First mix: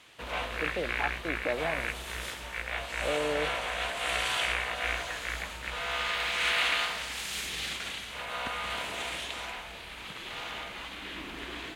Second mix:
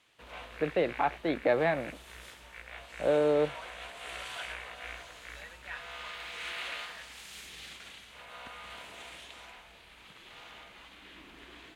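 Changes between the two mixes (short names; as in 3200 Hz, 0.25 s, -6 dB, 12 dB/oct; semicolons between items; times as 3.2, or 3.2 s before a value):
first voice +6.0 dB; second voice: entry +0.60 s; background -11.5 dB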